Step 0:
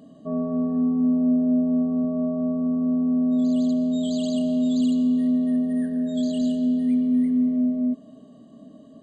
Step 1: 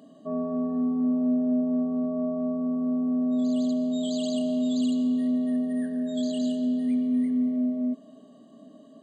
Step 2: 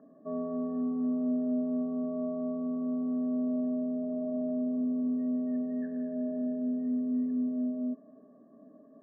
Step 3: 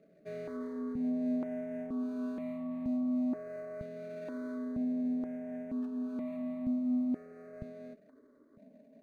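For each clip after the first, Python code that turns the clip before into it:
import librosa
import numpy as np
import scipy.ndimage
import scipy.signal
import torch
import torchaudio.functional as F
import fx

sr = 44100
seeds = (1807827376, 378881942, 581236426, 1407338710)

y1 = scipy.signal.sosfilt(scipy.signal.bessel(2, 290.0, 'highpass', norm='mag', fs=sr, output='sos'), x)
y1 = fx.notch(y1, sr, hz=480.0, q=12.0)
y2 = scipy.signal.sosfilt(scipy.signal.cheby1(6, 6, 1800.0, 'lowpass', fs=sr, output='sos'), y1)
y2 = y2 * librosa.db_to_amplitude(-2.0)
y3 = scipy.signal.medfilt(y2, 41)
y3 = fx.phaser_held(y3, sr, hz=2.1, low_hz=260.0, high_hz=1500.0)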